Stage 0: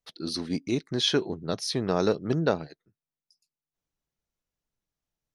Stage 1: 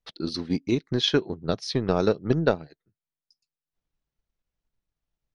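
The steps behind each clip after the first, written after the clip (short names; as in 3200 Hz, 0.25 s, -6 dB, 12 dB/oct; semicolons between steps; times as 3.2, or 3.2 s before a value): transient shaper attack +5 dB, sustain -5 dB; LPF 4900 Hz 12 dB/oct; low shelf 75 Hz +9.5 dB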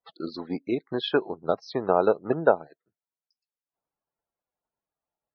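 added harmonics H 8 -44 dB, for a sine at -7 dBFS; loudest bins only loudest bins 64; band-pass 830 Hz, Q 1.4; gain +7.5 dB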